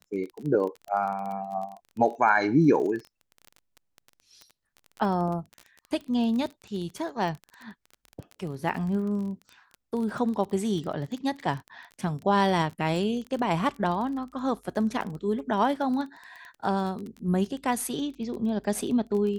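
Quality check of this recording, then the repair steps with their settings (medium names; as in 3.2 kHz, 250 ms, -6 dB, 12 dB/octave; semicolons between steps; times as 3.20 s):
crackle 23 per s -33 dBFS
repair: de-click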